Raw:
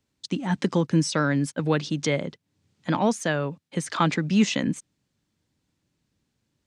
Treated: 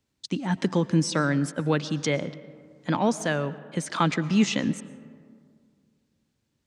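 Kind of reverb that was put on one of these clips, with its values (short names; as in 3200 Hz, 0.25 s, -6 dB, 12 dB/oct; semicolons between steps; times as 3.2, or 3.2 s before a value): digital reverb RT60 2.1 s, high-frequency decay 0.4×, pre-delay 75 ms, DRR 16 dB; gain -1 dB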